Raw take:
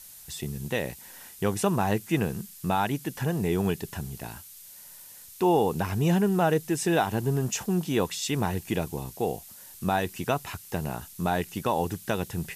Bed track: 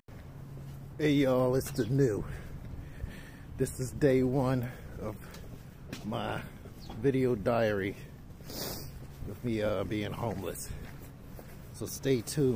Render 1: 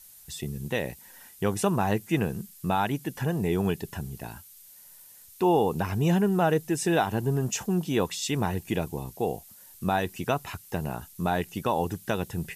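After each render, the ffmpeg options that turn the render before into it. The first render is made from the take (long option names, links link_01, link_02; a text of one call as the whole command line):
ffmpeg -i in.wav -af "afftdn=noise_reduction=6:noise_floor=-48" out.wav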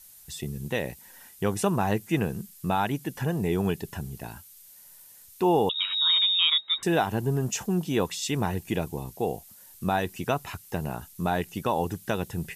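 ffmpeg -i in.wav -filter_complex "[0:a]asettb=1/sr,asplit=3[link_01][link_02][link_03];[link_01]atrim=end=5.694[link_04];[link_02]atrim=start=5.69:end=6.83,asetpts=PTS-STARTPTS,afade=type=in:duration=0.004:curve=qsin,afade=type=out:start_time=1.136:duration=0.004:curve=qsin,lowpass=frequency=3300:width_type=q:width=0.5098,lowpass=frequency=3300:width_type=q:width=0.6013,lowpass=frequency=3300:width_type=q:width=0.9,lowpass=frequency=3300:width_type=q:width=2.563,afreqshift=-3900[link_05];[link_03]atrim=start=6.826[link_06];[link_04][link_05]acrossfade=duration=0.004:curve1=hsin:curve2=qsin[link_07];[link_07][link_06]acrossfade=duration=0.004:curve1=qsin:curve2=hsin" out.wav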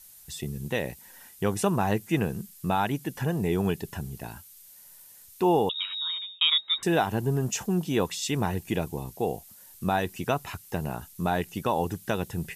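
ffmpeg -i in.wav -filter_complex "[0:a]asplit=2[link_01][link_02];[link_01]atrim=end=6.41,asetpts=PTS-STARTPTS,afade=type=out:start_time=5.52:duration=0.89[link_03];[link_02]atrim=start=6.41,asetpts=PTS-STARTPTS,afade=type=in:duration=0.004:curve=hsin[link_04];[link_03][link_04]concat=n=2:v=0:a=1" out.wav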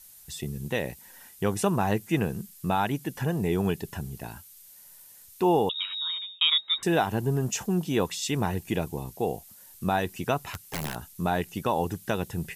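ffmpeg -i in.wav -filter_complex "[0:a]asplit=3[link_01][link_02][link_03];[link_01]afade=type=out:start_time=10.46:duration=0.02[link_04];[link_02]aeval=exprs='(mod(17.8*val(0)+1,2)-1)/17.8':channel_layout=same,afade=type=in:start_time=10.46:duration=0.02,afade=type=out:start_time=10.94:duration=0.02[link_05];[link_03]afade=type=in:start_time=10.94:duration=0.02[link_06];[link_04][link_05][link_06]amix=inputs=3:normalize=0" out.wav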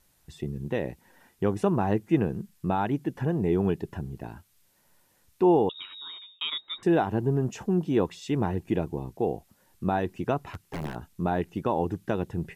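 ffmpeg -i in.wav -af "lowpass=frequency=1200:poles=1,equalizer=frequency=330:width=2.1:gain=4.5" out.wav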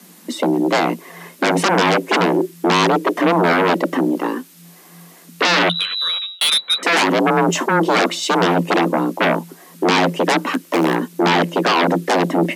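ffmpeg -i in.wav -af "aeval=exprs='0.266*sin(PI/2*7.08*val(0)/0.266)':channel_layout=same,afreqshift=170" out.wav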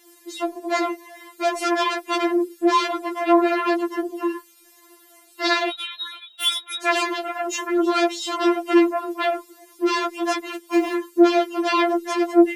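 ffmpeg -i in.wav -af "flanger=delay=2.1:depth=8.8:regen=64:speed=0.48:shape=triangular,afftfilt=real='re*4*eq(mod(b,16),0)':imag='im*4*eq(mod(b,16),0)':win_size=2048:overlap=0.75" out.wav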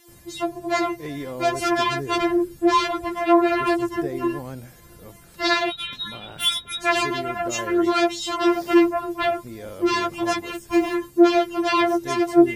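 ffmpeg -i in.wav -i bed.wav -filter_complex "[1:a]volume=-6dB[link_01];[0:a][link_01]amix=inputs=2:normalize=0" out.wav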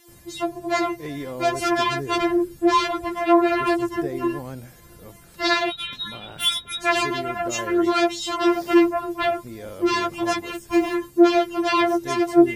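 ffmpeg -i in.wav -af anull out.wav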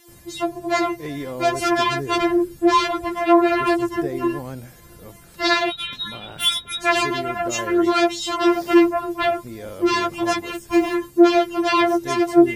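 ffmpeg -i in.wav -af "volume=2dB,alimiter=limit=-3dB:level=0:latency=1" out.wav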